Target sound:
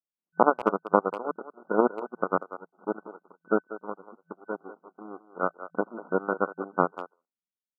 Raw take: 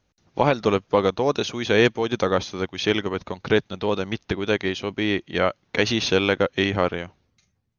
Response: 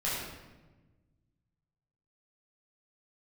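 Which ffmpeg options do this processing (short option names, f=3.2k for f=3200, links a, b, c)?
-filter_complex "[0:a]aeval=exprs='0.596*(cos(1*acos(clip(val(0)/0.596,-1,1)))-cos(1*PI/2))+0.188*(cos(3*acos(clip(val(0)/0.596,-1,1)))-cos(3*PI/2))+0.0335*(cos(6*acos(clip(val(0)/0.596,-1,1)))-cos(6*PI/2))+0.00376*(cos(7*acos(clip(val(0)/0.596,-1,1)))-cos(7*PI/2))+0.0119*(cos(8*acos(clip(val(0)/0.596,-1,1)))-cos(8*PI/2))':c=same,afftfilt=real='re*between(b*sr/4096,170,1500)':imag='im*between(b*sr/4096,170,1500)':win_size=4096:overlap=0.75,asplit=2[a][b];[b]adelay=190,highpass=300,lowpass=3.4k,asoftclip=type=hard:threshold=-15dB,volume=-13dB[c];[a][c]amix=inputs=2:normalize=0,volume=5dB"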